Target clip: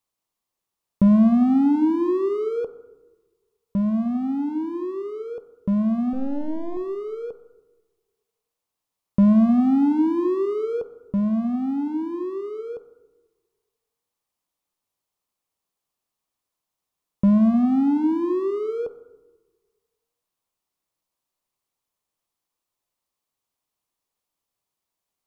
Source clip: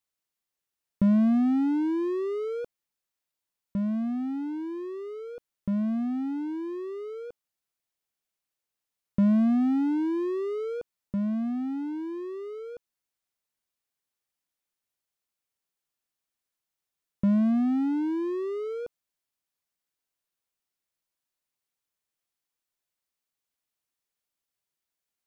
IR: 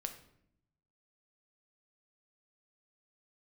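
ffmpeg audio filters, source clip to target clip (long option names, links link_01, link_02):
-filter_complex "[0:a]asettb=1/sr,asplit=3[link_01][link_02][link_03];[link_01]atrim=end=6.134[link_04];[link_02]atrim=start=6.13:end=6.77,asetpts=PTS-STARTPTS,afade=type=in:duration=0.004:curve=qsin,afade=type=out:start_time=0.636:duration=0.004:curve=qsin,aeval=exprs='if(lt(val(0),0),0.251*val(0),val(0))':channel_layout=same[link_05];[link_03]atrim=start=6.766[link_06];[link_04][link_05]acrossfade=duration=0.004:curve1=hsin:curve2=qsin[link_07];[link_07][link_06]acrossfade=duration=0.004:curve1=qsin:curve2=hsin,asplit=2[link_08][link_09];[link_09]highshelf=frequency=1500:width_type=q:width=3:gain=-8.5[link_10];[1:a]atrim=start_sample=2205,asetrate=27783,aresample=44100[link_11];[link_10][link_11]afir=irnorm=-1:irlink=0,volume=-0.5dB[link_12];[link_08][link_12]amix=inputs=2:normalize=0"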